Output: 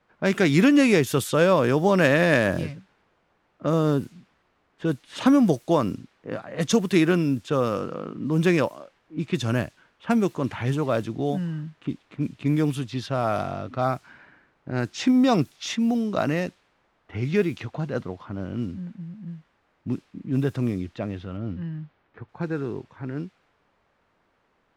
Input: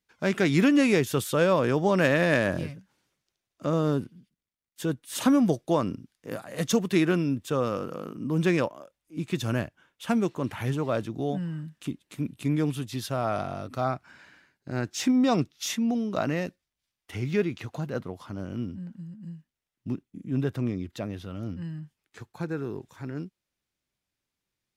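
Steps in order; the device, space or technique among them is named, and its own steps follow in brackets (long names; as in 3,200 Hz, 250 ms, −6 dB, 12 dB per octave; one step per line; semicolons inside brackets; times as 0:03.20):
cassette deck with a dynamic noise filter (white noise bed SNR 32 dB; low-pass that shuts in the quiet parts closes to 1,300 Hz, open at −22.5 dBFS)
0:21.37–0:22.29: high-frequency loss of the air 160 metres
level +3.5 dB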